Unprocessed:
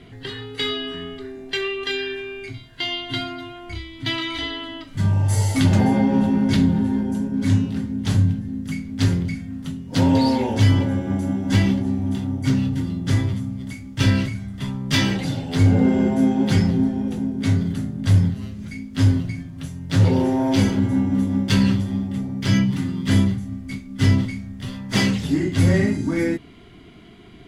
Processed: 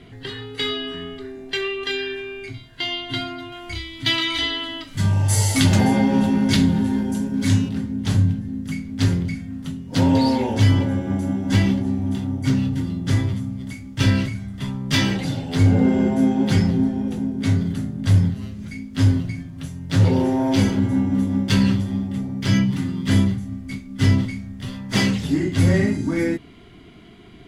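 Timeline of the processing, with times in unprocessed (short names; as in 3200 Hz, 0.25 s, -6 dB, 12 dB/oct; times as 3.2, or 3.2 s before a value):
3.52–7.69 high shelf 2000 Hz +8.5 dB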